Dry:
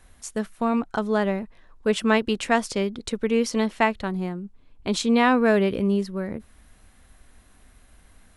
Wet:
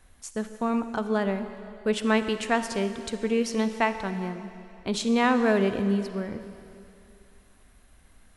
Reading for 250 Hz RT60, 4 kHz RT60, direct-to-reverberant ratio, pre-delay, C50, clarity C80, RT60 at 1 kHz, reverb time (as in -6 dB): 2.3 s, 2.5 s, 9.5 dB, 38 ms, 9.5 dB, 10.5 dB, 2.8 s, 2.6 s